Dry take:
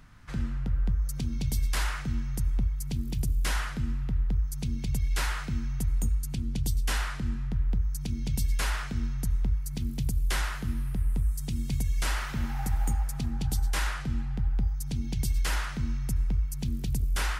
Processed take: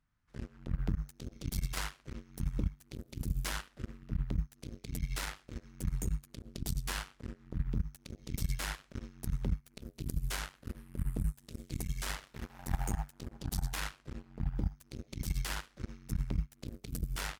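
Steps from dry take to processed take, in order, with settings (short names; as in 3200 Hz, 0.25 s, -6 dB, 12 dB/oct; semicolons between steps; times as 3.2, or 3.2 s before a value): outdoor echo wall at 190 m, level -26 dB; added harmonics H 3 -9 dB, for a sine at -17.5 dBFS; gain -2 dB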